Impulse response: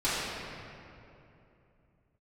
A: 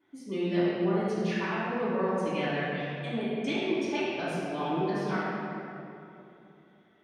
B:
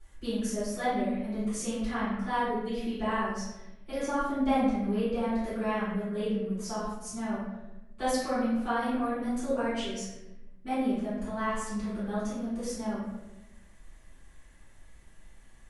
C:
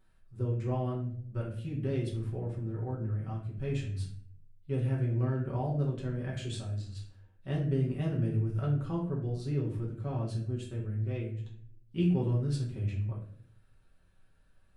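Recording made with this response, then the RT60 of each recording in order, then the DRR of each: A; 2.9, 1.0, 0.60 s; -13.0, -15.0, -5.0 dB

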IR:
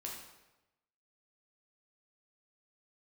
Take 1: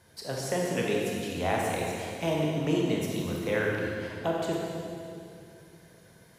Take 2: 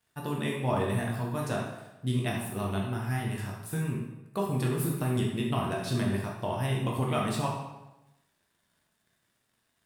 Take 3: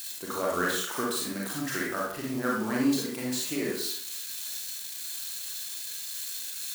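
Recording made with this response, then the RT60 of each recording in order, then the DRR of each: 2; 2.6, 1.0, 0.60 s; -2.5, -2.5, -4.0 dB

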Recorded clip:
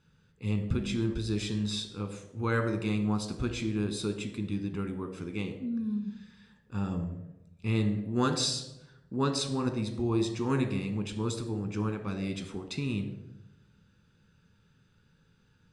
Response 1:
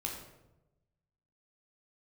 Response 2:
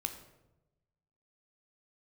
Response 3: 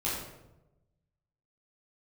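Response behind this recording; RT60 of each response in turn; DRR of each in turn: 2; 0.95, 1.0, 0.95 s; -0.5, 6.0, -8.5 dB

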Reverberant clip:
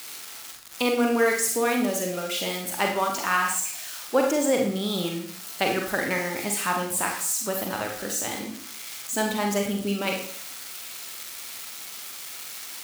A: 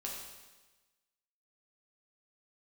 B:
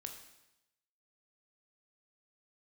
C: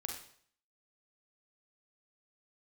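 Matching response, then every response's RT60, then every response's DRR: C; 1.2, 0.90, 0.60 s; -3.5, 3.5, 1.0 dB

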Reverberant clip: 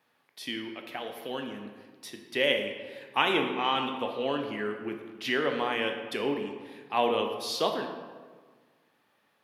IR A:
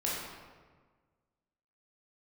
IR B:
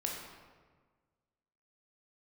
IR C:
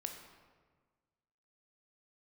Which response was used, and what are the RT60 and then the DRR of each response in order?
C; 1.5, 1.5, 1.5 s; -6.5, -1.5, 3.5 dB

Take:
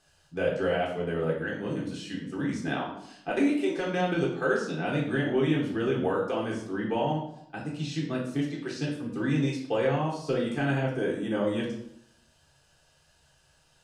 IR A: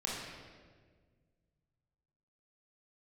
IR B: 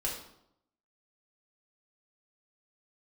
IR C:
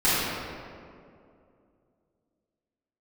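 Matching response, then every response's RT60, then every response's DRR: B; 1.6, 0.75, 2.4 s; -5.0, -4.5, -14.0 dB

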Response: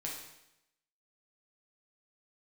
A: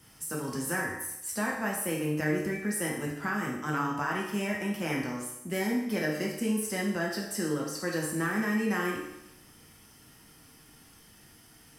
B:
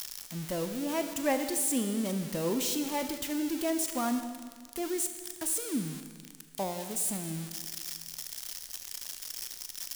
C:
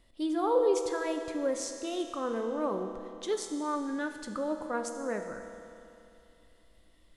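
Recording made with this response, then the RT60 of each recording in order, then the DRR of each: A; 0.85, 1.8, 2.7 s; -3.5, 7.5, 5.0 dB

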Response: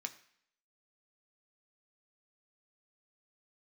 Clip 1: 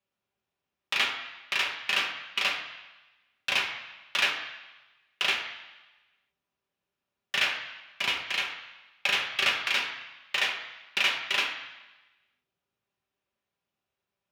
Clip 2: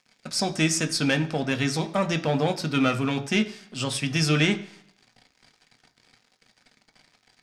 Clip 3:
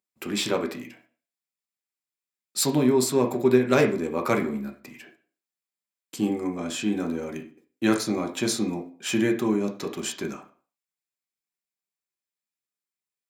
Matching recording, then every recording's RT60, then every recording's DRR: 2; 1.1, 0.65, 0.40 s; -1.5, 5.5, 3.0 dB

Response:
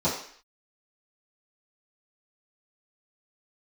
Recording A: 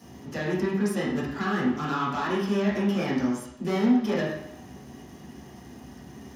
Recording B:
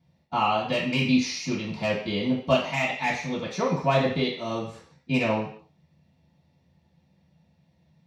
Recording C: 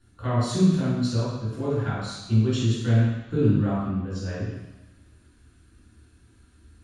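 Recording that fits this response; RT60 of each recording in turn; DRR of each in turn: B; 0.75, 0.55, 1.1 s; -11.0, -12.5, -9.5 dB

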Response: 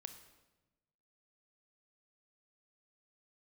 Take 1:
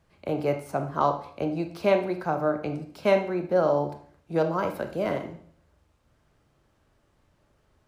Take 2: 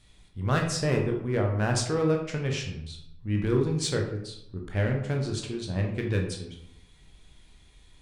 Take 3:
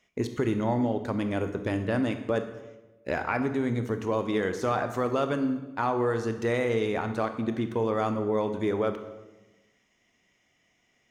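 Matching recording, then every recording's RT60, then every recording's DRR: 3; 0.55, 0.80, 1.1 s; 6.5, 1.0, 8.0 dB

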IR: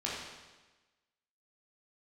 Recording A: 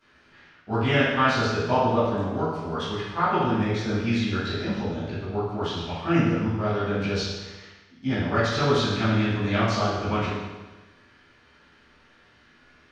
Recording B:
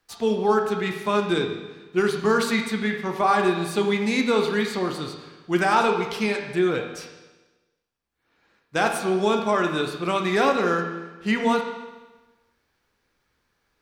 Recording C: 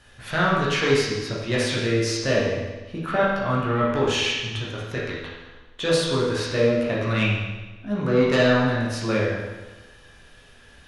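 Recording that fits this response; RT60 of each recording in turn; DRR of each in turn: C; 1.2, 1.2, 1.2 s; -15.5, 3.0, -6.0 dB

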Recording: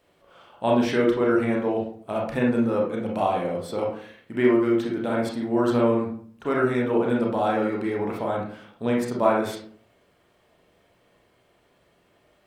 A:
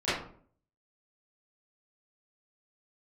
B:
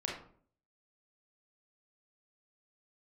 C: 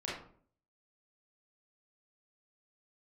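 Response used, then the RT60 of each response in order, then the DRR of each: B; 0.55, 0.55, 0.55 s; -16.5, -2.5, -7.0 dB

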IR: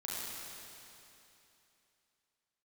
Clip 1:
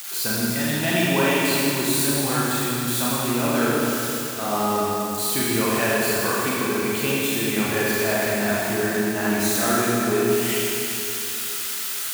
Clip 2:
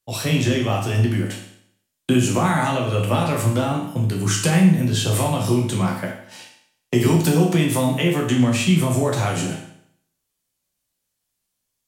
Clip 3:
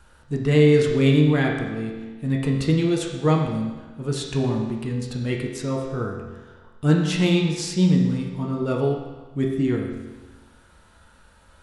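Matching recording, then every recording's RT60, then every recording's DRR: 1; 3.0, 0.65, 1.3 s; -7.0, -1.0, -0.5 dB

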